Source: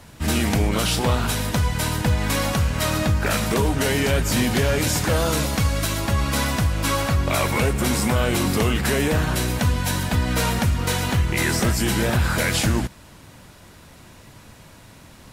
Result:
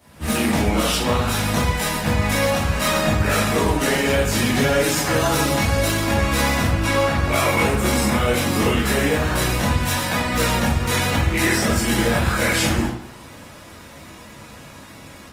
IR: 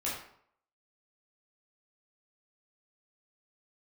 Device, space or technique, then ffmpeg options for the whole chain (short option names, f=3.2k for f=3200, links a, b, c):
far-field microphone of a smart speaker: -filter_complex "[0:a]asettb=1/sr,asplit=3[a][b][c];[a]atrim=end=4.554[d];[b]atrim=start=4.55:end=5.59,asetpts=PTS-STARTPTS,afade=t=in:d=0.004:c=qsin,afade=t=out:st=1.036:d=0.004:c=qsin,aecho=1:1:7.1:0.49,atrim=end_sample=45864[e];[c]atrim=start=5.586[f];[d][e]acrossfade=d=0.004:c1=hsin:c2=qsin[g];[g][f]acrossfade=d=0.004:c1=qsin:c2=hsin,asettb=1/sr,asplit=3[h][i][j];[h]atrim=end=6.674[k];[i]atrim=start=6.67:end=7.17,asetpts=PTS-STARTPTS,afade=t=in:d=0.004:c=qsin,afade=t=out:st=0.496:d=0.004:c=qsin,highshelf=f=7.7k:g=-8[l];[j]atrim=start=7.166[m];[k][l]acrossfade=d=0.004:c1=hsin:c2=qsin[n];[n][m]acrossfade=d=0.004:c1=qsin:c2=hsin,asettb=1/sr,asplit=3[o][p][q];[o]atrim=end=9.894[r];[p]atrim=start=9.89:end=10.29,asetpts=PTS-STARTPTS,afade=t=in:d=0.004:c=qsin,afade=t=out:st=0.396:d=0.004:c=qsin,highpass=f=250:p=1[s];[q]atrim=start=10.286[t];[r][s]acrossfade=d=0.004:c1=hsin:c2=qsin[u];[u][t]acrossfade=d=0.004:c1=qsin:c2=hsin[v];[1:a]atrim=start_sample=2205[w];[v][w]afir=irnorm=-1:irlink=0,highpass=f=120:p=1,dynaudnorm=f=110:g=3:m=8dB,volume=-5.5dB" -ar 48000 -c:a libopus -b:a 24k